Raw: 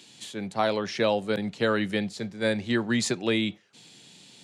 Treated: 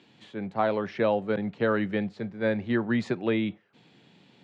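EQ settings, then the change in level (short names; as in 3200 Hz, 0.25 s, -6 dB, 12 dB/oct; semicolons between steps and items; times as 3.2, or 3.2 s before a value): LPF 1900 Hz 12 dB/oct; 0.0 dB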